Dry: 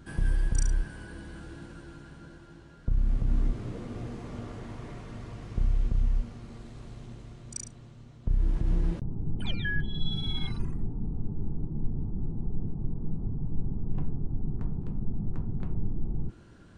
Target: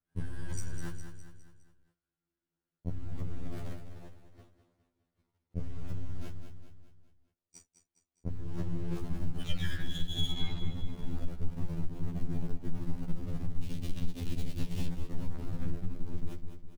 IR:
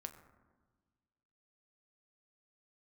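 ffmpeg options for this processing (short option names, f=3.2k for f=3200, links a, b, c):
-filter_complex "[0:a]aeval=exprs='val(0)+0.5*0.0112*sgn(val(0))':c=same,flanger=delay=9.9:depth=2:regen=-51:speed=0.53:shape=triangular,agate=range=-52dB:threshold=-35dB:ratio=16:detection=peak,aeval=exprs='clip(val(0),-1,0.01)':c=same,asettb=1/sr,asplit=3[a][b][c];[a]atrim=end=10.314[d];[b]atrim=start=10.31:end=10.75,asetpts=PTS-STARTPTS,afade=t=in:d=0.004:c=qsin,afade=t=out:st=0.436:d=0.004:c=qsin,lowpass=4.1k[e];[c]atrim=start=10.746[f];[d][e]acrossfade=d=0.004:c1=hsin:c2=qsin[g];[g][f]acrossfade=d=0.004:c1=qsin:c2=hsin,asettb=1/sr,asplit=3[h][i][j];[h]atrim=end=13.624[k];[i]atrim=start=13.62:end=14.88,asetpts=PTS-STARTPTS,afade=t=in:d=0.004:c=qsin,afade=t=out:st=1.256:d=0.004:c=qsin,highshelf=f=2k:t=q:w=1.5:g=12[l];[j]atrim=start=14.876[m];[k][l]acrossfade=d=0.004:c1=hsin:c2=qsin[n];[n][m]acrossfade=d=0.004:c1=qsin:c2=hsin,aecho=1:1:205|410|615|820|1025:0.282|0.135|0.0649|0.0312|0.015,acompressor=threshold=-31dB:ratio=4,afftfilt=real='re*2*eq(mod(b,4),0)':imag='im*2*eq(mod(b,4),0)':win_size=2048:overlap=0.75,volume=7dB"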